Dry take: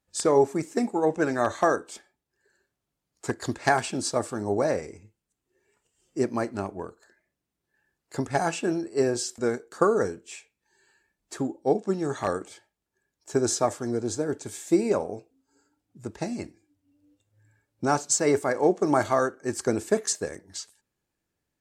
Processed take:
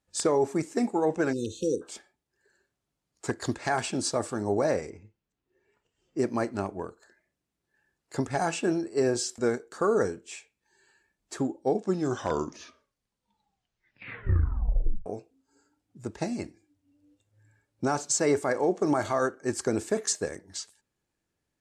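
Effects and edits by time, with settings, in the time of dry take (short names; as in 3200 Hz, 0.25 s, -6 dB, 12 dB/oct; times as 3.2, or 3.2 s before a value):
1.33–1.82 spectral delete 530–2500 Hz
4.9–6.19 air absorption 140 m
11.83 tape stop 3.23 s
whole clip: LPF 11000 Hz 12 dB/oct; limiter -15 dBFS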